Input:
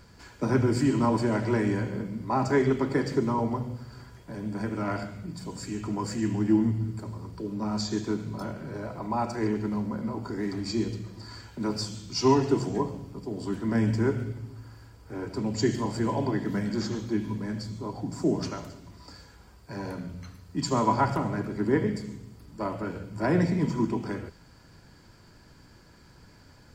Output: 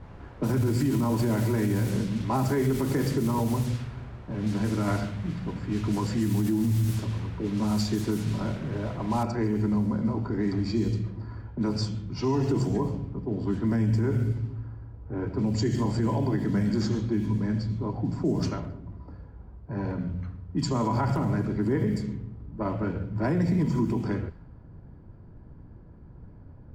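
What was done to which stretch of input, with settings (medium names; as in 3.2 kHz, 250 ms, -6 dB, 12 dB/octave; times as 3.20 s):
9.23 s: noise floor step -41 dB -63 dB
whole clip: bass shelf 220 Hz +10.5 dB; level-controlled noise filter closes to 680 Hz, open at -19 dBFS; peak limiter -17.5 dBFS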